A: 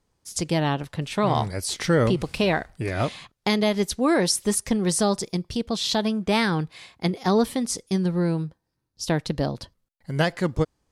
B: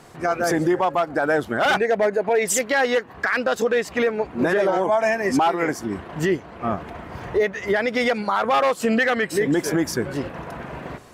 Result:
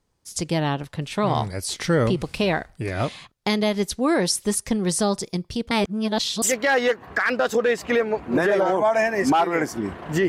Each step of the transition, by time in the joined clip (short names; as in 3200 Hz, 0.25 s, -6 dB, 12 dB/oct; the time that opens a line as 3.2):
A
5.71–6.42 reverse
6.42 switch to B from 2.49 s